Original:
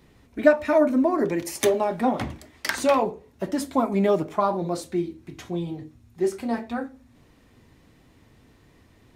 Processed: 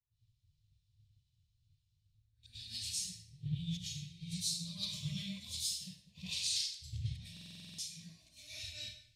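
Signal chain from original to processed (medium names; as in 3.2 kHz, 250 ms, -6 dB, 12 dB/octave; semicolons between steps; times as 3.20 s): reverse the whole clip; inverse Chebyshev band-stop 240–1400 Hz, stop band 40 dB; low-pass that closes with the level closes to 2.6 kHz, closed at -19 dBFS; compression 16:1, threshold -46 dBFS, peak gain reduction 22 dB; ten-band graphic EQ 125 Hz +8 dB, 2 kHz -7 dB, 4 kHz +12 dB, 8 kHz +6 dB; gate -46 dBFS, range -8 dB; peaking EQ 5.5 kHz +3 dB 0.25 oct; reverberation RT60 1.2 s, pre-delay 95 ms, DRR -10.5 dB; buffer glitch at 7.32 s, samples 2048, times 9; three bands expanded up and down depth 100%; trim -9 dB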